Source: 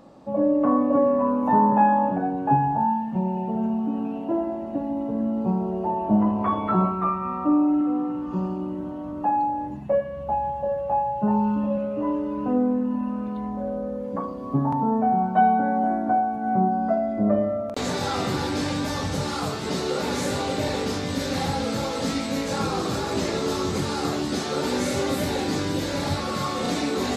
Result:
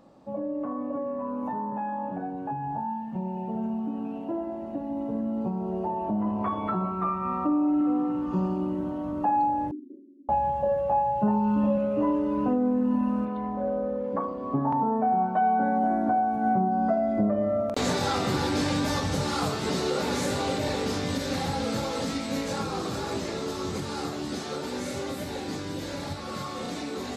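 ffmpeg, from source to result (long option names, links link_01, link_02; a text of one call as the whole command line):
ffmpeg -i in.wav -filter_complex "[0:a]asettb=1/sr,asplit=3[link_01][link_02][link_03];[link_01]atrim=end=9.714[link_04];[link_02]atrim=start=9.71:end=10.29,asetpts=PTS-STARTPTS,afade=type=in:duration=0.004:curve=qsin,afade=type=out:start_time=0.576:duration=0.004:curve=qsin,asuperpass=centerf=310:order=12:qfactor=2.1[link_05];[link_03]atrim=start=10.286[link_06];[link_04][link_05]acrossfade=duration=0.004:curve1=hsin:curve2=qsin[link_07];[link_07][link_06]acrossfade=duration=0.004:curve1=qsin:curve2=hsin,asettb=1/sr,asplit=3[link_08][link_09][link_10];[link_08]atrim=end=13.254[link_11];[link_09]atrim=start=13.25:end=15.61,asetpts=PTS-STARTPTS,afade=type=in:duration=0.004:curve=qsin,afade=type=out:start_time=2.356:duration=0.004:curve=qsin,bass=frequency=250:gain=-7,treble=frequency=4000:gain=-13[link_12];[link_10]atrim=start=15.606[link_13];[link_11][link_12]acrossfade=duration=0.004:curve1=hsin:curve2=qsin[link_14];[link_14][link_13]acrossfade=duration=0.004:curve1=qsin:curve2=hsin,alimiter=limit=-18dB:level=0:latency=1:release=264,dynaudnorm=framelen=770:gausssize=17:maxgain=8dB,volume=-6dB" out.wav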